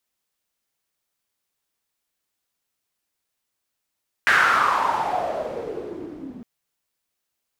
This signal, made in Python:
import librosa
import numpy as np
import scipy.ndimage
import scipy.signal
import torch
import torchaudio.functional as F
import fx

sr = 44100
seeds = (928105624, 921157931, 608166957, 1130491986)

y = fx.riser_noise(sr, seeds[0], length_s=2.16, colour='pink', kind='bandpass', start_hz=1700.0, end_hz=230.0, q=5.7, swell_db=-24, law='exponential')